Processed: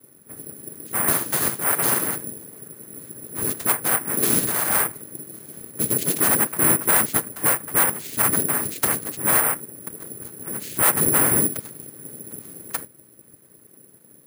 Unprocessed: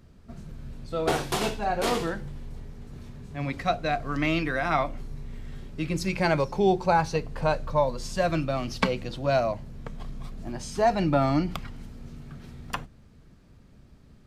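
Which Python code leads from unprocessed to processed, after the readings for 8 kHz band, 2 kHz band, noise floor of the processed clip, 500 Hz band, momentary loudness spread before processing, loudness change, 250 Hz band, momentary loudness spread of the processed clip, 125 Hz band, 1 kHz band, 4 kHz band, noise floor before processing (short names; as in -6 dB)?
+23.0 dB, +5.0 dB, -52 dBFS, -4.0 dB, 20 LU, +8.0 dB, -0.5 dB, 20 LU, -2.5 dB, -1.0 dB, +1.5 dB, -54 dBFS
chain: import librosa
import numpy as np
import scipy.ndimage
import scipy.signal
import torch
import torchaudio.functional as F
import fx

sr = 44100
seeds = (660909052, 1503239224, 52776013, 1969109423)

y = fx.noise_vocoder(x, sr, seeds[0], bands=3)
y = (np.kron(scipy.signal.resample_poly(y, 1, 4), np.eye(4)[0]) * 4)[:len(y)]
y = np.clip(10.0 ** (6.5 / 20.0) * y, -1.0, 1.0) / 10.0 ** (6.5 / 20.0)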